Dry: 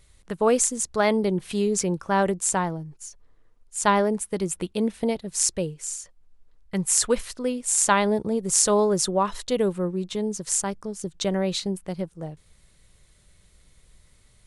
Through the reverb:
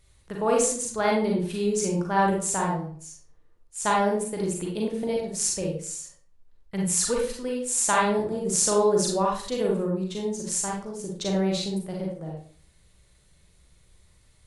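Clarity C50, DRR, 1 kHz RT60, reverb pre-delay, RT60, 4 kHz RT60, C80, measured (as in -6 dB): 2.0 dB, -2.0 dB, 0.50 s, 34 ms, 0.45 s, 0.35 s, 7.5 dB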